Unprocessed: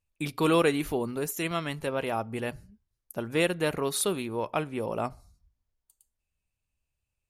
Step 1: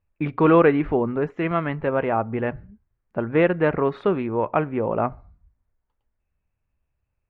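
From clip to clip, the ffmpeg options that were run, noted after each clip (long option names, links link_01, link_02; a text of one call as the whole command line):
ffmpeg -i in.wav -af "lowpass=frequency=2000:width=0.5412,lowpass=frequency=2000:width=1.3066,volume=8dB" out.wav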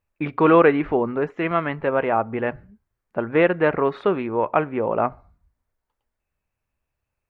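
ffmpeg -i in.wav -af "lowshelf=frequency=220:gain=-9.5,volume=3dB" out.wav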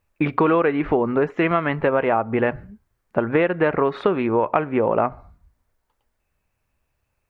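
ffmpeg -i in.wav -af "acompressor=threshold=-23dB:ratio=6,volume=7.5dB" out.wav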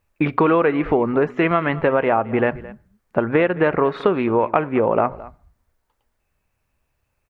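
ffmpeg -i in.wav -af "aecho=1:1:218:0.112,volume=1.5dB" out.wav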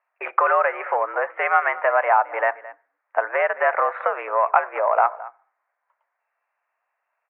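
ffmpeg -i in.wav -af "acontrast=24,highpass=frequency=580:width_type=q:width=0.5412,highpass=frequency=580:width_type=q:width=1.307,lowpass=frequency=2100:width_type=q:width=0.5176,lowpass=frequency=2100:width_type=q:width=0.7071,lowpass=frequency=2100:width_type=q:width=1.932,afreqshift=84,volume=-1.5dB" out.wav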